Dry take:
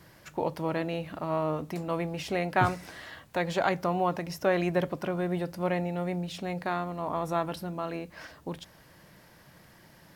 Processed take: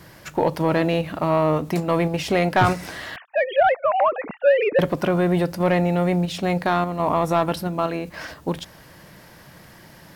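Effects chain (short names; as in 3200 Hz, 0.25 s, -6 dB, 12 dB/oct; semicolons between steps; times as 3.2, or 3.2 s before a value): 3.16–4.79 sine-wave speech; in parallel at -1 dB: level quantiser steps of 17 dB; on the sum: soft clip -15 dBFS, distortion -19 dB; gain +7.5 dB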